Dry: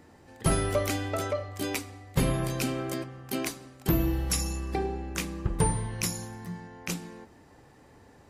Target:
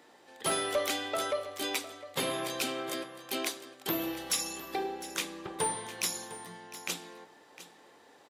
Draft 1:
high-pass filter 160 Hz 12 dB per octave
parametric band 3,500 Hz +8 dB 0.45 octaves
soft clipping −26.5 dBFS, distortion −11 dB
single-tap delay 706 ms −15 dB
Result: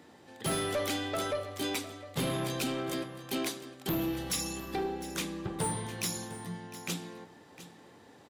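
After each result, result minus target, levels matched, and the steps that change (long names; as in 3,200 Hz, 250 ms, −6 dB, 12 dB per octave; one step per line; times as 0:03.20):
125 Hz band +12.5 dB; soft clipping: distortion +9 dB
change: high-pass filter 420 Hz 12 dB per octave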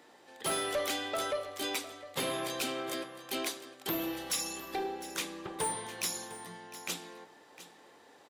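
soft clipping: distortion +8 dB
change: soft clipping −19.5 dBFS, distortion −20 dB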